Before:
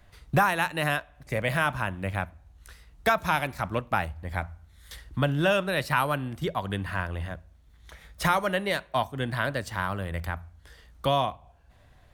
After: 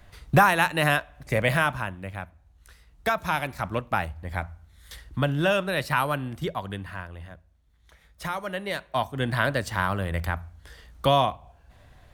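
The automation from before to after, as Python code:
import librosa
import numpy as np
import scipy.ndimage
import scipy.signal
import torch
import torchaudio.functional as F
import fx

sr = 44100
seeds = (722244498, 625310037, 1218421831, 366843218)

y = fx.gain(x, sr, db=fx.line((1.49, 4.5), (2.11, -6.0), (3.67, 0.5), (6.41, 0.5), (7.12, -8.0), (8.26, -8.0), (9.31, 4.0)))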